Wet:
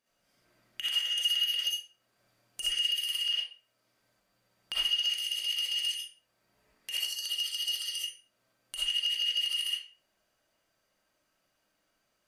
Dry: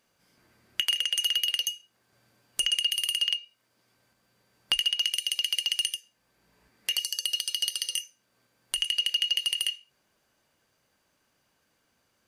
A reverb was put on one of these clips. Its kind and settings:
comb and all-pass reverb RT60 0.42 s, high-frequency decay 0.7×, pre-delay 20 ms, DRR −8 dB
level −12.5 dB

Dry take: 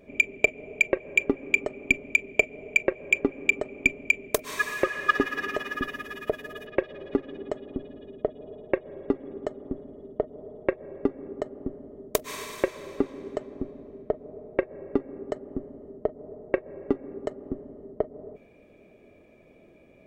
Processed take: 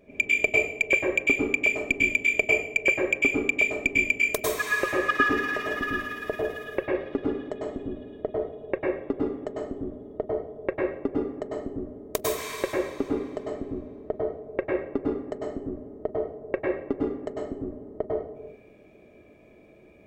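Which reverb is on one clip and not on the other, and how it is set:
dense smooth reverb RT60 0.55 s, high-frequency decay 0.9×, pre-delay 90 ms, DRR −4 dB
level −3.5 dB

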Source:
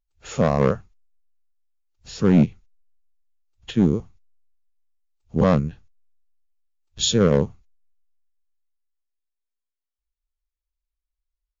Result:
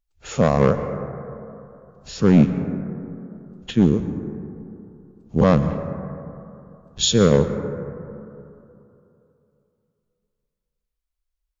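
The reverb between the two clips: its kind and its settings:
dense smooth reverb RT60 2.9 s, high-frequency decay 0.25×, pre-delay 105 ms, DRR 9.5 dB
level +2 dB

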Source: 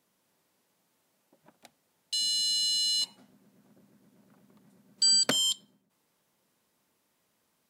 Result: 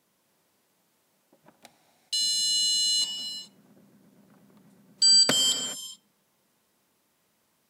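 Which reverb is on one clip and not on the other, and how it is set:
reverb whose tail is shaped and stops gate 450 ms flat, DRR 8 dB
level +3 dB

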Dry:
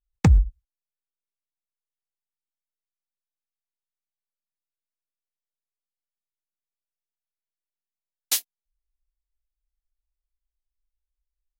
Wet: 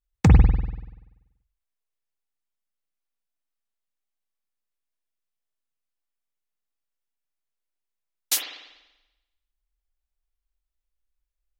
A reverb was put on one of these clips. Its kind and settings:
spring reverb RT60 1 s, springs 48 ms, chirp 65 ms, DRR 0 dB

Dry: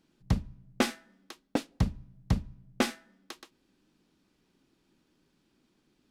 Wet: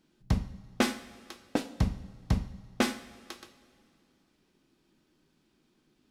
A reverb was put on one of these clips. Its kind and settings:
coupled-rooms reverb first 0.49 s, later 2.5 s, from −15 dB, DRR 7.5 dB

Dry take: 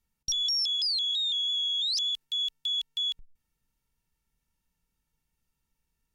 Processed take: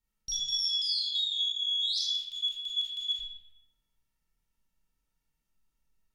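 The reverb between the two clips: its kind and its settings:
comb and all-pass reverb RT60 0.97 s, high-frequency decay 0.75×, pre-delay 0 ms, DRR −5.5 dB
level −8 dB

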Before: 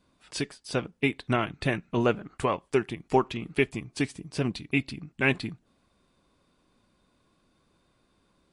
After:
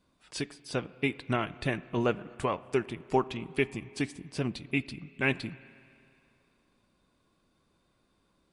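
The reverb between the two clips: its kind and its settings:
spring reverb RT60 2.5 s, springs 31/48 ms, chirp 80 ms, DRR 18 dB
level −3.5 dB

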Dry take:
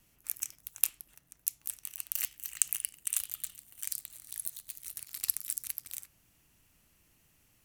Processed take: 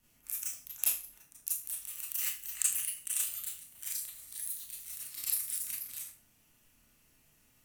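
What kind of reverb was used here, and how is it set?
four-comb reverb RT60 0.35 s, combs from 26 ms, DRR −7 dB
level −7 dB

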